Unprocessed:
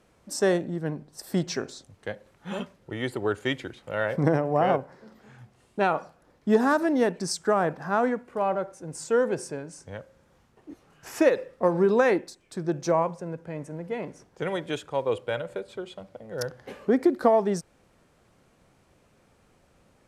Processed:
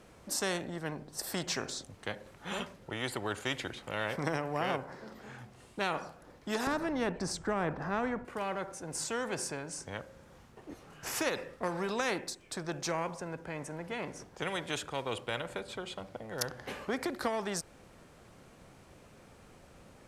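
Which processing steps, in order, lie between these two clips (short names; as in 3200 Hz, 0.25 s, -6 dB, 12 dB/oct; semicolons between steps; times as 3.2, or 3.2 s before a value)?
6.67–8.25 tilt -4 dB/oct; spectral compressor 2:1; gain -5.5 dB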